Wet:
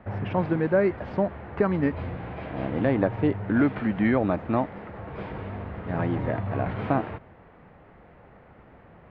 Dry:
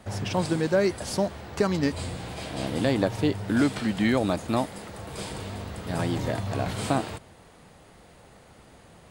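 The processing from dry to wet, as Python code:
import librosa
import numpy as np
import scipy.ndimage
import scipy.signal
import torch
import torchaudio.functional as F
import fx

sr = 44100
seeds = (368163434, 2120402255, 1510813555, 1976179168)

y = scipy.signal.sosfilt(scipy.signal.butter(4, 2200.0, 'lowpass', fs=sr, output='sos'), x)
y = y * 10.0 ** (1.0 / 20.0)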